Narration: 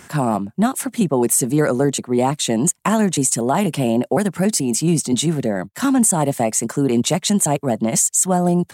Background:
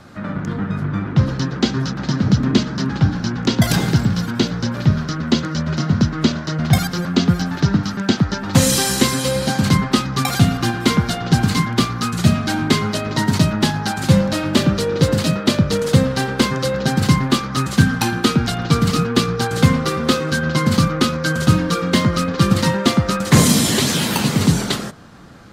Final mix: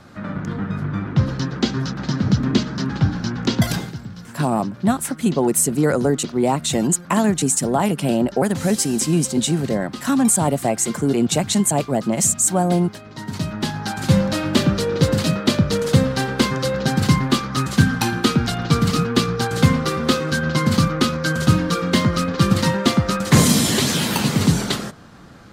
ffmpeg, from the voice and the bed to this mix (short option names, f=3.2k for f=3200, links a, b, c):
-filter_complex "[0:a]adelay=4250,volume=-1dB[a];[1:a]volume=12.5dB,afade=t=out:st=3.6:d=0.33:silence=0.199526,afade=t=in:st=13.13:d=1.13:silence=0.177828[b];[a][b]amix=inputs=2:normalize=0"